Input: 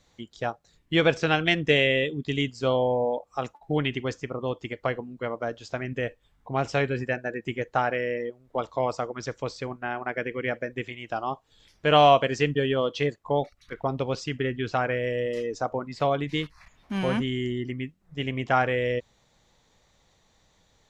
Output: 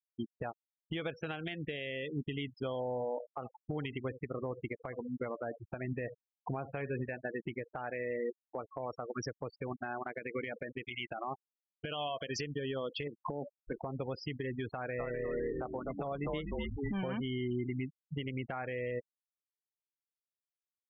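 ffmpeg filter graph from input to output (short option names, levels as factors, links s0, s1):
-filter_complex "[0:a]asettb=1/sr,asplit=3[s0][s1][s2];[s0]atrim=end=2.814[s3];[s1]atrim=start=2.81:end=7.09,asetpts=PTS-STARTPTS,afade=t=in:d=0.004:c=qsin,afade=t=out:st=4.276:d=0.004:c=qsin,lowpass=3400,aecho=1:1:72|144|216:0.158|0.0428|0.0116,atrim=end_sample=188748[s4];[s2]atrim=start=7.086[s5];[s3][s4]acrossfade=d=0.004:c1=hsin:c2=qsin[s6];[s6][s5]acrossfade=d=0.004:c1=qsin:c2=hsin,asettb=1/sr,asplit=3[s7][s8][s9];[s7]atrim=end=10.184[s10];[s8]atrim=start=10.18:end=12.41,asetpts=PTS-STARTPTS,afade=t=in:d=0.004:c=qsin,afade=t=out:st=2.226:d=0.004:c=qsin,equalizer=f=3900:w=0.89:g=10,acompressor=threshold=0.0447:ratio=8:attack=3.2:release=140:knee=1:detection=peak[s11];[s9]atrim=start=12.406[s12];[s10][s11]acrossfade=d=0.004:c1=hsin:c2=qsin[s13];[s13][s12]acrossfade=d=0.004:c1=qsin:c2=hsin,asettb=1/sr,asplit=3[s14][s15][s16];[s14]atrim=end=13.074[s17];[s15]atrim=start=13.07:end=13.83,asetpts=PTS-STARTPTS,afade=t=in:d=0.004:c=qsin,afade=t=out:st=0.756:d=0.004:c=qsin,equalizer=f=270:w=0.47:g=13.5,acompressor=threshold=0.0708:ratio=8:attack=3.2:release=140:knee=1:detection=peak,acrusher=bits=4:mode=log:mix=0:aa=0.000001[s18];[s16]atrim=start=13.826[s19];[s17][s18]acrossfade=d=0.004:c1=hsin:c2=qsin[s20];[s20][s19]acrossfade=d=0.004:c1=qsin:c2=hsin,asettb=1/sr,asplit=3[s21][s22][s23];[s21]atrim=end=14.734[s24];[s22]atrim=start=14.73:end=17.09,asetpts=PTS-STARTPTS,afade=t=in:d=0.004:c=qsin,afade=t=out:st=2.356:d=0.004:c=qsin,asplit=7[s25][s26][s27][s28][s29][s30][s31];[s26]adelay=250,afreqshift=-94,volume=0.473[s32];[s27]adelay=500,afreqshift=-188,volume=0.221[s33];[s28]adelay=750,afreqshift=-282,volume=0.105[s34];[s29]adelay=1000,afreqshift=-376,volume=0.049[s35];[s30]adelay=1250,afreqshift=-470,volume=0.0232[s36];[s31]adelay=1500,afreqshift=-564,volume=0.0108[s37];[s25][s32][s33][s34][s35][s36][s37]amix=inputs=7:normalize=0,atrim=end_sample=104076,acrossover=split=4100[s38][s39];[s39]acompressor=threshold=0.00158:ratio=4:attack=1:release=60[s40];[s38][s40]amix=inputs=2:normalize=0[s41];[s23]atrim=start=17.086[s42];[s24][s41]acrossfade=d=0.004:c1=hsin:c2=qsin[s43];[s43][s42]acrossfade=d=0.004:c1=qsin:c2=hsin,afftfilt=real='re*gte(hypot(re,im),0.0355)':imag='im*gte(hypot(re,im),0.0355)':win_size=1024:overlap=0.75,acompressor=threshold=0.0178:ratio=10,alimiter=level_in=3.16:limit=0.0631:level=0:latency=1:release=227,volume=0.316,volume=2.11"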